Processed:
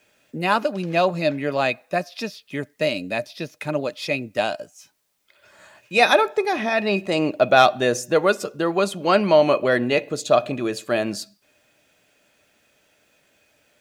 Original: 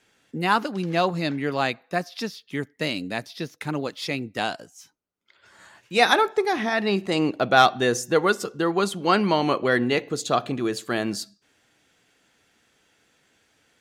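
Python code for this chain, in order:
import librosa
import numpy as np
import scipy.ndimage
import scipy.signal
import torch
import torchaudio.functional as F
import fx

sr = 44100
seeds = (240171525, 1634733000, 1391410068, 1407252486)

y = fx.small_body(x, sr, hz=(600.0, 2500.0), ring_ms=75, db=16)
y = fx.quant_dither(y, sr, seeds[0], bits=12, dither='triangular')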